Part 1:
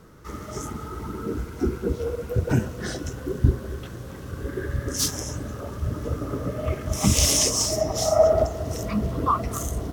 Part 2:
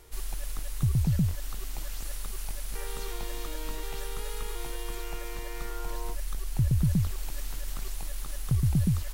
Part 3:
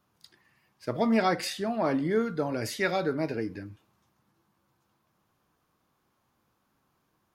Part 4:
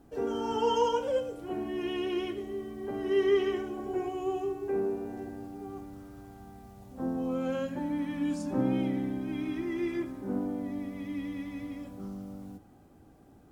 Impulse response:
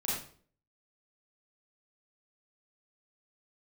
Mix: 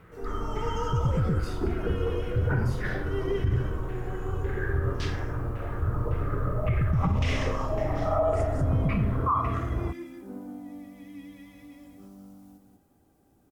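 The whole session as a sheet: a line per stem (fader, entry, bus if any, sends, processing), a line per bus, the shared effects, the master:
−6.0 dB, 0.00 s, send −6.5 dB, no echo send, graphic EQ with 15 bands 100 Hz +5 dB, 250 Hz −8 dB, 630 Hz −3 dB, 6,300 Hz −5 dB; auto-filter low-pass saw down 1.8 Hz 940–2,500 Hz
0.0 dB, 0.10 s, no send, no echo send, Bessel low-pass filter 760 Hz, order 2
−12.5 dB, 0.00 s, send −10 dB, echo send −11.5 dB, downward compressor, threshold −31 dBFS, peak gain reduction 11.5 dB
−8.5 dB, 0.00 s, no send, echo send −5 dB, high-shelf EQ 6,500 Hz +10.5 dB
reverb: on, RT60 0.50 s, pre-delay 32 ms
echo: single-tap delay 188 ms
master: brickwall limiter −16.5 dBFS, peak gain reduction 9.5 dB

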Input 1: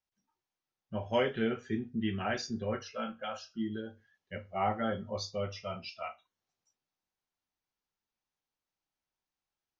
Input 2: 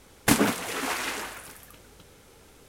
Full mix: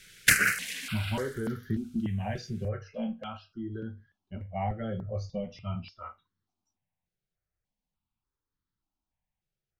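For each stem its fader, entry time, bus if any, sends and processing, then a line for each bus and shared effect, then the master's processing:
+2.0 dB, 0.00 s, no send, bass and treble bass +13 dB, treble −1 dB; downward compressor 2.5 to 1, threshold −29 dBFS, peak gain reduction 7 dB
−2.5 dB, 0.00 s, no send, drawn EQ curve 210 Hz 0 dB, 890 Hz −21 dB, 1,500 Hz +13 dB; automatic ducking −10 dB, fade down 0.40 s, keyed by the first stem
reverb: not used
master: high-shelf EQ 4,300 Hz −10 dB; step-sequenced phaser 3.4 Hz 260–2,500 Hz

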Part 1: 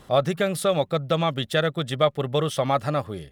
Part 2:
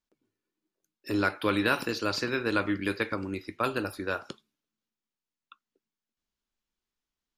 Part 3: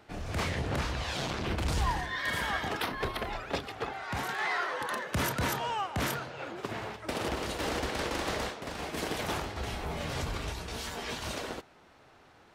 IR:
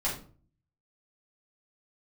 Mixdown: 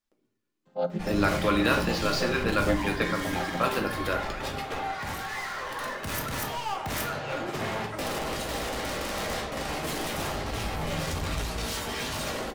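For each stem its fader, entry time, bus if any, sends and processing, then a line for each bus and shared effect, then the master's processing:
−10.0 dB, 0.65 s, send −17.5 dB, channel vocoder with a chord as carrier minor triad, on F3
−2.0 dB, 0.00 s, send −7.5 dB, running median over 3 samples
+2.0 dB, 0.90 s, send −7 dB, hard clipping −35.5 dBFS, distortion −7 dB; speech leveller 0.5 s; automatic ducking −6 dB, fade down 0.75 s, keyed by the second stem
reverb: on, RT60 0.45 s, pre-delay 4 ms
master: high-shelf EQ 9,000 Hz +6 dB

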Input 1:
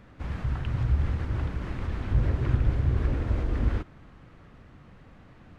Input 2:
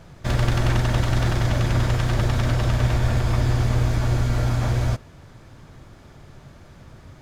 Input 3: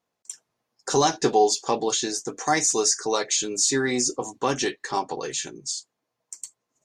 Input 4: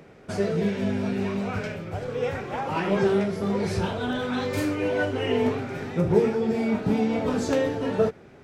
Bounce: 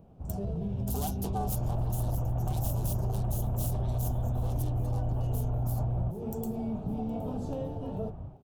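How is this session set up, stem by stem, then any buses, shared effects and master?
−7.0 dB, 0.00 s, bus A, no send, no echo send, parametric band 3,600 Hz −14.5 dB 0.93 octaves
−4.0 dB, 1.15 s, no bus, no send, no echo send, brickwall limiter −19 dBFS, peak gain reduction 11.5 dB; automatic gain control gain up to 9 dB; Bessel low-pass filter 1,600 Hz, order 8
−12.0 dB, 0.00 s, no bus, no send, echo send −22.5 dB, phase distortion by the signal itself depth 0.28 ms; parametric band 8,500 Hz +13 dB 2.9 octaves
−8.5 dB, 0.00 s, bus A, no send, no echo send, no processing
bus A: 0.0 dB, parametric band 140 Hz +5 dB 2.1 octaves; brickwall limiter −23 dBFS, peak gain reduction 8.5 dB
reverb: not used
echo: repeating echo 767 ms, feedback 30%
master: drawn EQ curve 170 Hz 0 dB, 280 Hz −5 dB, 480 Hz −6 dB, 740 Hz +2 dB, 2,000 Hz −26 dB, 2,900 Hz −10 dB, 4,500 Hz −14 dB, 7,200 Hz −13 dB, 13,000 Hz −2 dB; downward compressor 6 to 1, threshold −27 dBFS, peak gain reduction 10 dB

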